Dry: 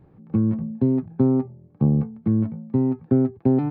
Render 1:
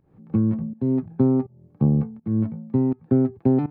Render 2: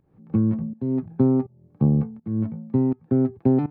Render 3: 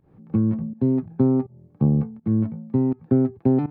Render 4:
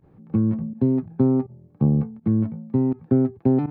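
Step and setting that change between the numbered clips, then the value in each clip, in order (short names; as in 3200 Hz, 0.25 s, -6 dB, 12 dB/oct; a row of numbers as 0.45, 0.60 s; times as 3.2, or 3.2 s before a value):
pump, release: 273, 413, 167, 71 ms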